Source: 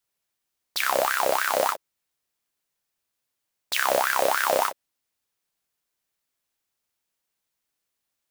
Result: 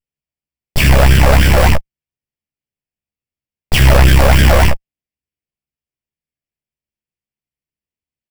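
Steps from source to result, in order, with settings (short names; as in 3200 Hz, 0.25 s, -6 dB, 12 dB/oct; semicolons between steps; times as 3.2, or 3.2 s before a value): minimum comb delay 0.39 ms; tone controls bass +11 dB, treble -9 dB; notch 830 Hz, Q 20; sample leveller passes 5; doubler 14 ms -3.5 dB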